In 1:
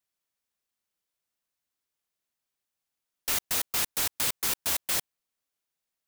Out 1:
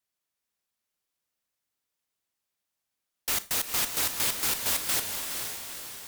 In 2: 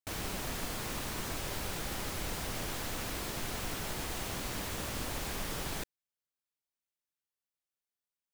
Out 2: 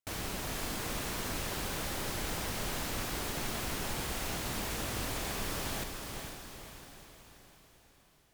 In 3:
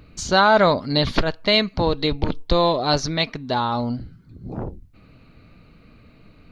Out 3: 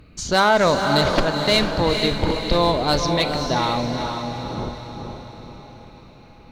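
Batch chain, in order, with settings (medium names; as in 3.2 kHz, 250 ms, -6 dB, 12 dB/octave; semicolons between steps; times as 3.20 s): one-sided clip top -13.5 dBFS, bottom -7.5 dBFS; echo that smears into a reverb 463 ms, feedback 51%, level -5 dB; Schroeder reverb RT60 0.31 s, combs from 28 ms, DRR 15 dB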